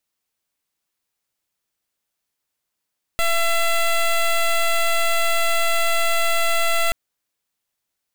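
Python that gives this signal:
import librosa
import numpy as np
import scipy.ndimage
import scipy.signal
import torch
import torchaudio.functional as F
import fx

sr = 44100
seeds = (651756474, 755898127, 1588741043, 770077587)

y = fx.pulse(sr, length_s=3.73, hz=673.0, level_db=-18.0, duty_pct=12)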